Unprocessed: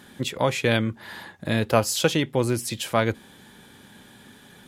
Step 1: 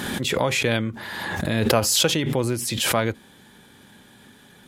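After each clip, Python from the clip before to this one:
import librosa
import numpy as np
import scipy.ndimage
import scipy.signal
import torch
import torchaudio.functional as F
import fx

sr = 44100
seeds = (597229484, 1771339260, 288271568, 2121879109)

y = fx.pre_swell(x, sr, db_per_s=26.0)
y = y * librosa.db_to_amplitude(-1.5)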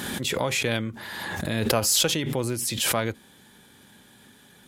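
y = fx.diode_clip(x, sr, knee_db=-4.5)
y = fx.high_shelf(y, sr, hz=4700.0, db=5.5)
y = y * librosa.db_to_amplitude(-4.0)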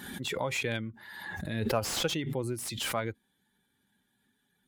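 y = fx.bin_expand(x, sr, power=1.5)
y = fx.slew_limit(y, sr, full_power_hz=210.0)
y = y * librosa.db_to_amplitude(-3.5)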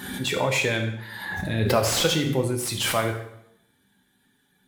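y = fx.rev_plate(x, sr, seeds[0], rt60_s=0.77, hf_ratio=0.85, predelay_ms=0, drr_db=3.0)
y = y * librosa.db_to_amplitude(7.0)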